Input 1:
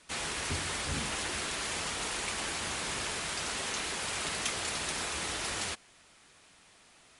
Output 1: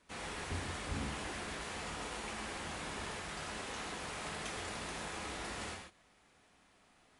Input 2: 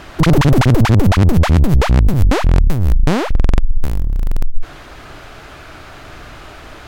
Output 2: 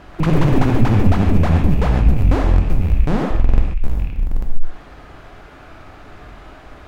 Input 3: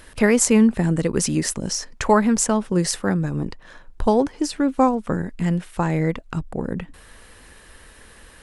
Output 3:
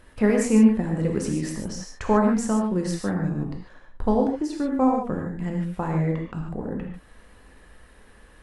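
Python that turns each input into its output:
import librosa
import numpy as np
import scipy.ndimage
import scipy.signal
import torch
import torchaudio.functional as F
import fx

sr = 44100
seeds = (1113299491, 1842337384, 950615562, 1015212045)

y = fx.rattle_buzz(x, sr, strikes_db=-11.0, level_db=-18.0)
y = fx.high_shelf(y, sr, hz=2200.0, db=-10.5)
y = fx.rev_gated(y, sr, seeds[0], gate_ms=170, shape='flat', drr_db=0.5)
y = y * 10.0 ** (-5.5 / 20.0)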